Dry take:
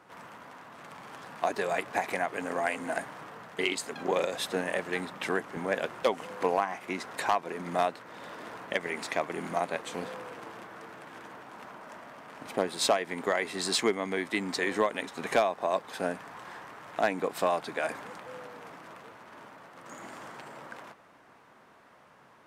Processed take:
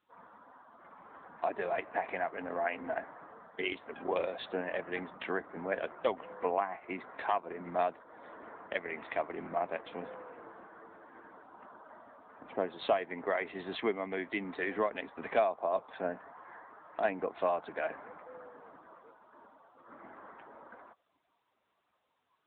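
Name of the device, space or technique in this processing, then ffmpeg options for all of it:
mobile call with aggressive noise cancelling: -af "adynamicequalizer=threshold=0.00562:dfrequency=660:dqfactor=6.7:tfrequency=660:tqfactor=6.7:attack=5:release=100:ratio=0.375:range=2:mode=boostabove:tftype=bell,highpass=170,afftdn=nr=20:nf=-46,volume=0.596" -ar 8000 -c:a libopencore_amrnb -b:a 10200

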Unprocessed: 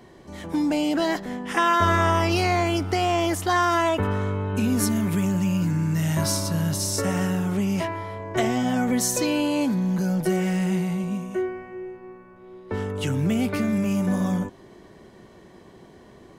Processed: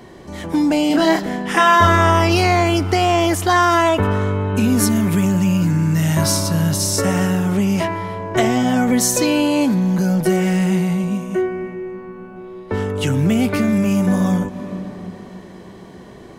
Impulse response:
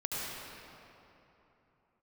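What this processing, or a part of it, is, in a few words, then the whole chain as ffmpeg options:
ducked reverb: -filter_complex "[0:a]asplit=3[s0][s1][s2];[1:a]atrim=start_sample=2205[s3];[s1][s3]afir=irnorm=-1:irlink=0[s4];[s2]apad=whole_len=722732[s5];[s4][s5]sidechaincompress=threshold=0.00631:ratio=4:attack=16:release=127,volume=0.299[s6];[s0][s6]amix=inputs=2:normalize=0,asettb=1/sr,asplit=3[s7][s8][s9];[s7]atrim=end=0.874[s10];[s8]atrim=start=0.87:end=1.87,asetpts=PTS-STARTPTS,afade=t=in:d=0.004:c=qsin,afade=t=out:st=0.996:d=0.004:c=qsin,asplit=2[s11][s12];[s12]adelay=31,volume=0.631[s13];[s11][s13]amix=inputs=2:normalize=0,atrim=end_sample=44100[s14];[s9]atrim=start=1.866[s15];[s10][s14]acrossfade=d=0.004:c1=hsin:c2=qsin[s16];[s16][s15]acrossfade=d=0.004:c1=qsin:c2=hsin,volume=2.11"

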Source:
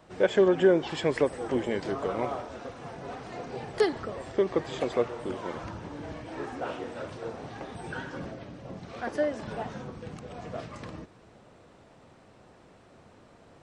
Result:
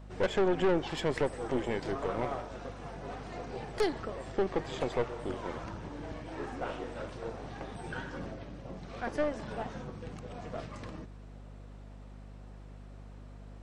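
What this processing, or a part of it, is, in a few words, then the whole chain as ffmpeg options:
valve amplifier with mains hum: -af "aeval=exprs='(tanh(14.1*val(0)+0.6)-tanh(0.6))/14.1':c=same,aeval=exprs='val(0)+0.00447*(sin(2*PI*50*n/s)+sin(2*PI*2*50*n/s)/2+sin(2*PI*3*50*n/s)/3+sin(2*PI*4*50*n/s)/4+sin(2*PI*5*50*n/s)/5)':c=same"

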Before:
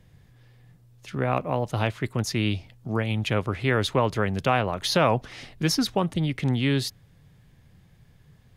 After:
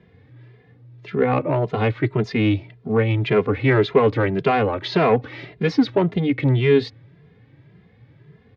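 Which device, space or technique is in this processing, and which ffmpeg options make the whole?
barber-pole flanger into a guitar amplifier: -filter_complex "[0:a]asplit=2[s0][s1];[s1]adelay=2.5,afreqshift=1.8[s2];[s0][s2]amix=inputs=2:normalize=1,asoftclip=type=tanh:threshold=0.0891,highpass=100,equalizer=f=120:t=q:w=4:g=5,equalizer=f=300:t=q:w=4:g=7,equalizer=f=430:t=q:w=4:g=10,equalizer=f=2100:t=q:w=4:g=4,equalizer=f=3000:t=q:w=4:g=-4,lowpass=f=3600:w=0.5412,lowpass=f=3600:w=1.3066,volume=2.37"

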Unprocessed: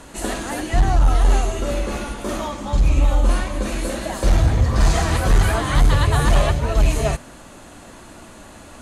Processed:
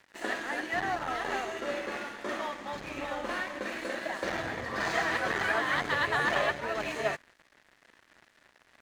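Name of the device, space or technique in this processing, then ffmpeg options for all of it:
pocket radio on a weak battery: -af "highpass=320,lowpass=4500,aeval=exprs='sgn(val(0))*max(abs(val(0))-0.00944,0)':c=same,equalizer=f=1800:t=o:w=0.53:g=9.5,volume=0.473"

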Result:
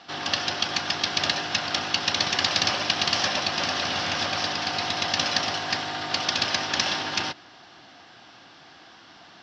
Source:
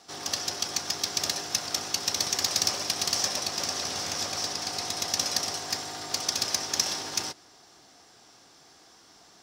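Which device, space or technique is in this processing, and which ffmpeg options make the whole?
guitar cabinet: -af "highpass=77,equalizer=f=430:t=q:w=4:g=-8,equalizer=f=1600:t=q:w=4:g=4,equalizer=f=2900:t=q:w=4:g=5,lowpass=f=4200:w=0.5412,lowpass=f=4200:w=1.3066,volume=2.51"

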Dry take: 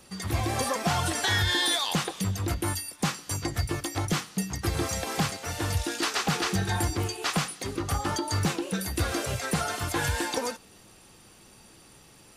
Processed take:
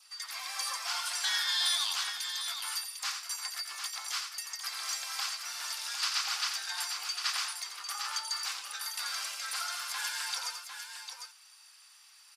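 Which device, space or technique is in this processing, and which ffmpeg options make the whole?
headphones lying on a table: -af "highpass=f=1100:w=0.5412,highpass=f=1100:w=1.3066,equalizer=f=4900:t=o:w=0.4:g=8,adynamicequalizer=threshold=0.00316:dfrequency=1800:dqfactor=5.3:tfrequency=1800:tqfactor=5.3:attack=5:release=100:ratio=0.375:range=2.5:mode=cutabove:tftype=bell,aecho=1:1:87|751:0.422|0.422,volume=0.562"

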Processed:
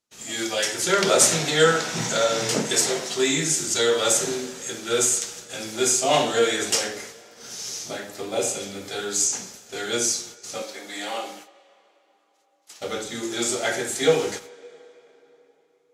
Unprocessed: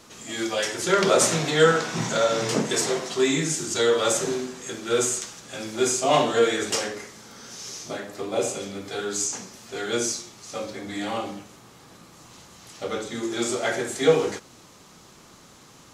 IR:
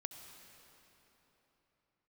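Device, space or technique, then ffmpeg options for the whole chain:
filtered reverb send: -filter_complex "[0:a]aemphasis=mode=production:type=cd,agate=range=0.0178:threshold=0.01:ratio=16:detection=peak,asplit=2[s0][s1];[s1]highpass=420,lowpass=6300[s2];[1:a]atrim=start_sample=2205[s3];[s2][s3]afir=irnorm=-1:irlink=0,volume=0.422[s4];[s0][s4]amix=inputs=2:normalize=0,asettb=1/sr,asplit=3[s5][s6][s7];[s5]atrim=end=10.624[s8];[s6]atrim=start=10.62:end=12.81,asetpts=PTS-STARTPTS,afade=t=in:d=0.004:c=qsin,afade=t=out:st=2.186:d=0.004:c=qsin,highpass=400[s9];[s7]atrim=start=12.806[s10];[s8][s9]acrossfade=d=0.004:c1=hsin:c2=qsin[s11];[s11][s10]acrossfade=d=0.004:c1=qsin:c2=hsin,equalizer=f=1100:t=o:w=0.29:g=-6,volume=0.891"

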